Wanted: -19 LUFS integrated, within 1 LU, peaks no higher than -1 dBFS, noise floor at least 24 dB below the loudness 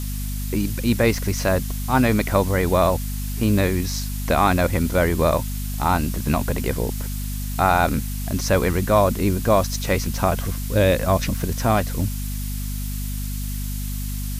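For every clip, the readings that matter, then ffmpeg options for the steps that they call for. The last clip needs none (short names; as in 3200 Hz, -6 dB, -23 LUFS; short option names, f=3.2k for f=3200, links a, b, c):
hum 50 Hz; harmonics up to 250 Hz; hum level -25 dBFS; noise floor -27 dBFS; noise floor target -46 dBFS; loudness -22.0 LUFS; peak -5.0 dBFS; loudness target -19.0 LUFS
-> -af "bandreject=f=50:t=h:w=4,bandreject=f=100:t=h:w=4,bandreject=f=150:t=h:w=4,bandreject=f=200:t=h:w=4,bandreject=f=250:t=h:w=4"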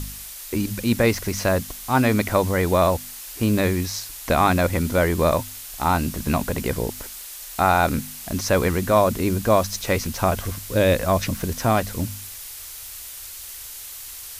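hum none; noise floor -37 dBFS; noise floor target -46 dBFS
-> -af "afftdn=nr=9:nf=-37"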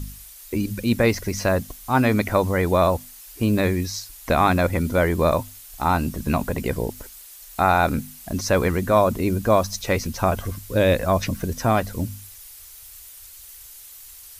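noise floor -44 dBFS; noise floor target -46 dBFS
-> -af "afftdn=nr=6:nf=-44"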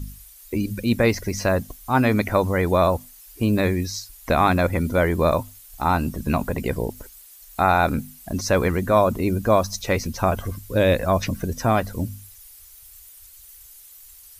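noise floor -47 dBFS; loudness -22.0 LUFS; peak -5.0 dBFS; loudness target -19.0 LUFS
-> -af "volume=3dB"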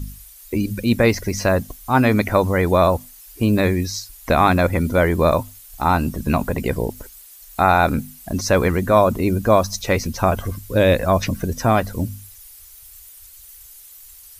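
loudness -19.0 LUFS; peak -2.0 dBFS; noise floor -44 dBFS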